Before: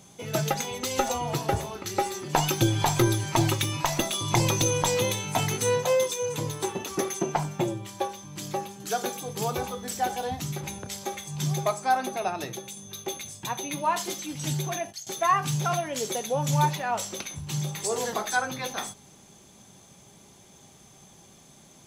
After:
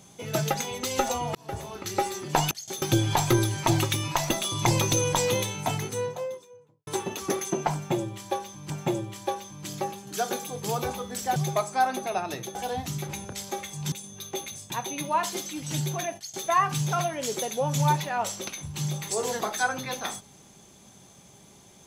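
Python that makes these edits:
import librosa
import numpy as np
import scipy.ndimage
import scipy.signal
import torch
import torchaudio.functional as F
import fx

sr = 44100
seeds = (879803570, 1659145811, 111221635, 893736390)

y = fx.studio_fade_out(x, sr, start_s=4.97, length_s=1.59)
y = fx.edit(y, sr, fx.fade_in_span(start_s=1.35, length_s=0.47),
    fx.repeat(start_s=7.43, length_s=0.96, count=2),
    fx.move(start_s=11.46, length_s=1.19, to_s=10.09),
    fx.duplicate(start_s=14.9, length_s=0.31, to_s=2.51), tone=tone)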